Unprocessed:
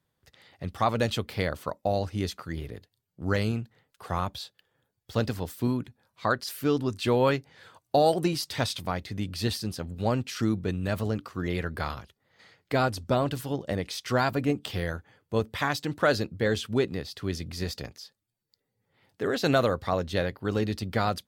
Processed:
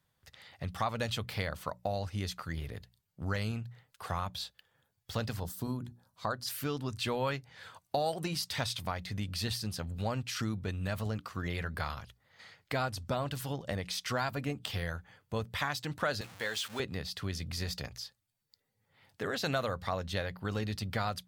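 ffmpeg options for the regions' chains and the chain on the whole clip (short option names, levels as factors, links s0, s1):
-filter_complex "[0:a]asettb=1/sr,asplit=3[s0][s1][s2];[s0]atrim=end=5.404[s3];[s1]atrim=start=5.4:end=6.46,asetpts=PTS-STARTPTS,afade=t=in:d=0.004:c=qsin,afade=t=out:st=1.056:d=0.004:c=qsin,equalizer=f=2300:t=o:w=1.1:g=-13,bandreject=f=60:t=h:w=6,bandreject=f=120:t=h:w=6,bandreject=f=180:t=h:w=6,bandreject=f=240:t=h:w=6,bandreject=f=300:t=h:w=6,bandreject=f=360:t=h:w=6[s4];[s2]atrim=start=6.456[s5];[s3][s4]acrossfade=d=0.004:c1=hsin:c2=qsin[s6];[s6][s5]acrossfade=d=0.004:c1=qsin:c2=hsin,asettb=1/sr,asplit=3[s7][s8][s9];[s7]atrim=end=16.214[s10];[s8]atrim=start=16.21:end=16.8,asetpts=PTS-STARTPTS,afade=t=in:d=0.004:c=qsin,afade=t=out:st=0.586:d=0.004:c=qsin,aeval=exprs='val(0)+0.5*0.0141*sgn(val(0))':c=same,highpass=f=1000:p=1[s11];[s9]atrim=start=16.796[s12];[s10][s11]acrossfade=d=0.004:c1=hsin:c2=qsin[s13];[s13][s12]acrossfade=d=0.004:c1=qsin:c2=hsin,equalizer=f=340:w=1.1:g=-9,bandreject=f=60:t=h:w=6,bandreject=f=120:t=h:w=6,bandreject=f=180:t=h:w=6,acompressor=threshold=0.0126:ratio=2,volume=1.33"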